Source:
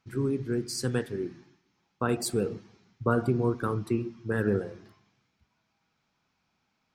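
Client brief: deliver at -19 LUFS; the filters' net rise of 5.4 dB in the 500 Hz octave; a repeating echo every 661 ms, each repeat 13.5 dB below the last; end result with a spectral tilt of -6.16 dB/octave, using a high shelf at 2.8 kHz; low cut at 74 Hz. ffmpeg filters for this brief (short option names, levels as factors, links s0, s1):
-af "highpass=74,equalizer=f=500:t=o:g=7,highshelf=f=2800:g=-8,aecho=1:1:661|1322:0.211|0.0444,volume=2.66"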